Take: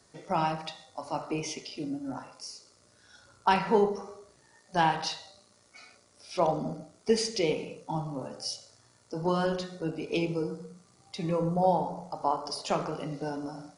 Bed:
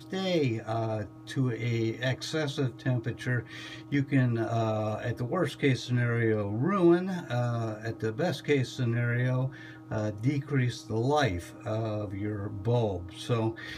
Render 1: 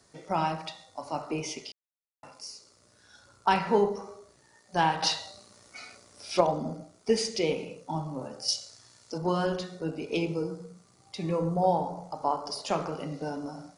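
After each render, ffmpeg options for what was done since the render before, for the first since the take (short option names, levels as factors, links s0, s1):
-filter_complex "[0:a]asettb=1/sr,asplit=3[s0][s1][s2];[s0]atrim=end=5.024[s3];[s1]atrim=start=5.02:end=6.41,asetpts=PTS-STARTPTS,afade=t=in:d=0.004:c=qsin,afade=t=out:st=1.386:d=0.004:c=qsin,acontrast=71[s4];[s2]atrim=start=6.406[s5];[s3][s4]acrossfade=d=0.004:c1=hsin:c2=qsin[s6];[s6][s5]acrossfade=d=0.004:c1=qsin:c2=hsin,asettb=1/sr,asplit=3[s7][s8][s9];[s7]atrim=end=8.484[s10];[s8]atrim=start=8.48:end=9.18,asetpts=PTS-STARTPTS,afade=t=in:d=0.004:c=qsin,afade=t=out:st=0.696:d=0.004:c=qsin,equalizer=f=4700:t=o:w=2.5:g=9[s11];[s9]atrim=start=9.176[s12];[s10][s11]acrossfade=d=0.004:c1=hsin:c2=qsin[s13];[s13][s12]acrossfade=d=0.004:c1=qsin:c2=hsin,asplit=3[s14][s15][s16];[s14]atrim=end=1.72,asetpts=PTS-STARTPTS,afade=t=out:st=1.716:d=0.004:c=hsin[s17];[s15]atrim=start=1.72:end=2.23,asetpts=PTS-STARTPTS,volume=0[s18];[s16]atrim=start=2.23,asetpts=PTS-STARTPTS,afade=t=in:d=0.004:c=hsin[s19];[s17][s18][s19]concat=n=3:v=0:a=1"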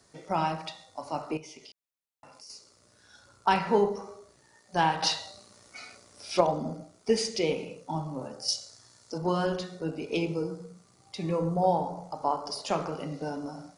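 -filter_complex "[0:a]asettb=1/sr,asplit=3[s0][s1][s2];[s0]atrim=end=1.374[s3];[s1]atrim=start=1.37:end=2.5,asetpts=PTS-STARTPTS,afade=t=in:d=0.004:c=qsin,afade=t=out:st=1.126:d=0.004:c=qsin,acompressor=threshold=0.00355:ratio=2.5:attack=3.2:release=140:knee=1:detection=peak[s4];[s2]atrim=start=2.496[s5];[s3][s4]acrossfade=d=0.004:c1=hsin:c2=qsin[s6];[s6][s5]acrossfade=d=0.004:c1=qsin:c2=hsin,asettb=1/sr,asplit=3[s7][s8][s9];[s7]atrim=end=8.324[s10];[s8]atrim=start=8.32:end=9.17,asetpts=PTS-STARTPTS,afade=t=in:d=0.004:c=qsin,afade=t=out:st=0.846:d=0.004:c=qsin,equalizer=f=2700:t=o:w=0.77:g=-5[s11];[s9]atrim=start=9.166[s12];[s10][s11]acrossfade=d=0.004:c1=hsin:c2=qsin[s13];[s13][s12]acrossfade=d=0.004:c1=qsin:c2=hsin"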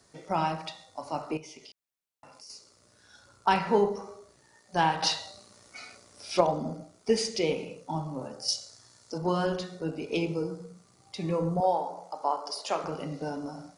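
-filter_complex "[0:a]asettb=1/sr,asplit=3[s0][s1][s2];[s0]atrim=end=11.604[s3];[s1]atrim=start=11.6:end=12.84,asetpts=PTS-STARTPTS,afade=t=in:d=0.004:c=qsin,afade=t=out:st=1.236:d=0.004:c=qsin,highpass=400[s4];[s2]atrim=start=12.836[s5];[s3][s4]acrossfade=d=0.004:c1=hsin:c2=qsin[s6];[s6][s5]acrossfade=d=0.004:c1=qsin:c2=hsin"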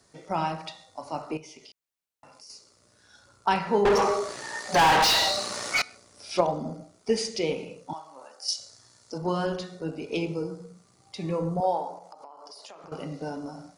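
-filter_complex "[0:a]asettb=1/sr,asplit=3[s0][s1][s2];[s0]atrim=end=3.854[s3];[s1]atrim=start=3.85:end=5.82,asetpts=PTS-STARTPTS,afade=t=in:d=0.004:c=qsin,afade=t=out:st=1.966:d=0.004:c=qsin,asplit=2[s4][s5];[s5]highpass=f=720:p=1,volume=50.1,asoftclip=type=tanh:threshold=0.237[s6];[s4][s6]amix=inputs=2:normalize=0,lowpass=f=4100:p=1,volume=0.501[s7];[s2]atrim=start=5.816[s8];[s3][s7]acrossfade=d=0.004:c1=hsin:c2=qsin[s9];[s9][s8]acrossfade=d=0.004:c1=qsin:c2=hsin,asettb=1/sr,asplit=3[s10][s11][s12];[s10]atrim=end=7.934[s13];[s11]atrim=start=7.93:end=8.59,asetpts=PTS-STARTPTS,afade=t=in:d=0.004:c=qsin,afade=t=out:st=0.656:d=0.004:c=qsin,highpass=890[s14];[s12]atrim=start=8.586[s15];[s13][s14]acrossfade=d=0.004:c1=hsin:c2=qsin[s16];[s16][s15]acrossfade=d=0.004:c1=qsin:c2=hsin,asettb=1/sr,asplit=3[s17][s18][s19];[s17]atrim=end=11.984[s20];[s18]atrim=start=11.98:end=12.92,asetpts=PTS-STARTPTS,afade=t=in:d=0.004:c=qsin,afade=t=out:st=0.936:d=0.004:c=qsin,acompressor=threshold=0.00794:ratio=16:attack=3.2:release=140:knee=1:detection=peak[s21];[s19]atrim=start=12.916[s22];[s20][s21]acrossfade=d=0.004:c1=hsin:c2=qsin[s23];[s23][s22]acrossfade=d=0.004:c1=qsin:c2=hsin"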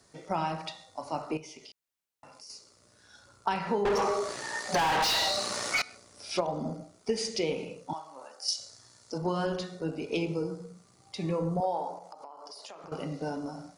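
-af "acompressor=threshold=0.0562:ratio=6"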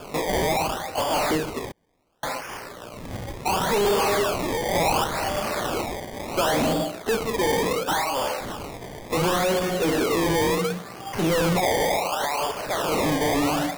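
-filter_complex "[0:a]asplit=2[s0][s1];[s1]highpass=f=720:p=1,volume=89.1,asoftclip=type=tanh:threshold=0.2[s2];[s0][s2]amix=inputs=2:normalize=0,lowpass=f=1100:p=1,volume=0.501,acrusher=samples=22:mix=1:aa=0.000001:lfo=1:lforange=22:lforate=0.7"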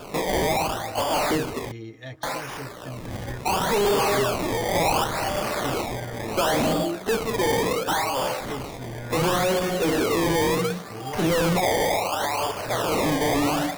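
-filter_complex "[1:a]volume=0.355[s0];[0:a][s0]amix=inputs=2:normalize=0"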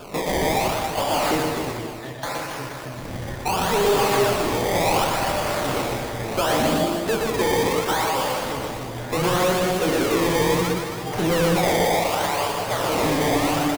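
-af "aecho=1:1:120|276|478.8|742.4|1085:0.631|0.398|0.251|0.158|0.1"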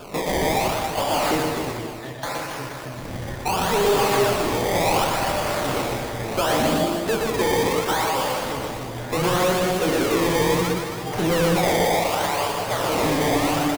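-af anull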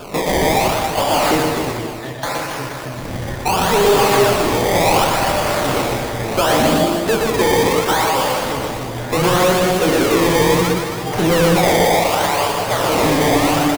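-af "volume=2"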